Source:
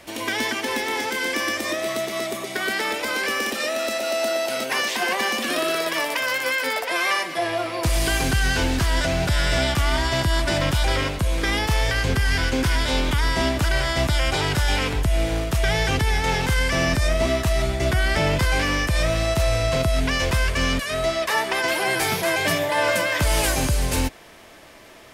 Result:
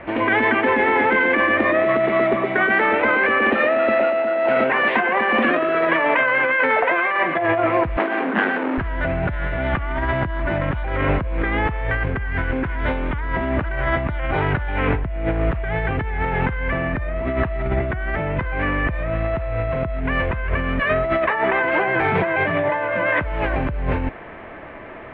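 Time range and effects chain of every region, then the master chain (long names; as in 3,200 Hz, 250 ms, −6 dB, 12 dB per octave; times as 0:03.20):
0:07.97–0:08.78: each half-wave held at its own peak + Butterworth high-pass 200 Hz 72 dB per octave + notch filter 7,200 Hz, Q 16
whole clip: inverse Chebyshev low-pass filter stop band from 5,400 Hz, stop band 50 dB; compressor whose output falls as the input rises −27 dBFS, ratio −1; level +6.5 dB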